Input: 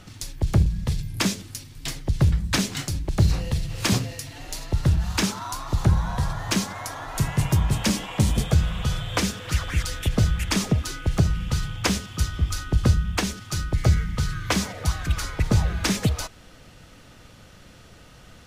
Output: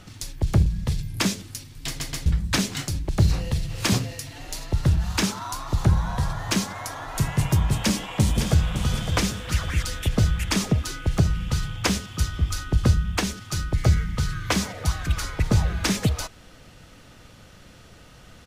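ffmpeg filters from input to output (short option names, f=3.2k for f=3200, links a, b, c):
-filter_complex "[0:a]asplit=2[a][b];[b]afade=t=in:st=7.83:d=0.01,afade=t=out:st=8.74:d=0.01,aecho=0:1:560|1120|1680|2240|2800:0.398107|0.159243|0.0636971|0.0254789|0.0101915[c];[a][c]amix=inputs=2:normalize=0,asplit=4[d][e][f][g];[d]atrim=end=2.002[h];[e]atrim=start=1.868:end=2.002[i];[f]atrim=start=1.868:end=2.002[j];[g]atrim=start=2.258[k];[h][i]acrossfade=d=0.004:c1=hsin:c2=hsin[l];[l][j]acrossfade=d=0.004:c1=hsin:c2=hsin[m];[m][k]acrossfade=d=0.004:c1=hsin:c2=hsin"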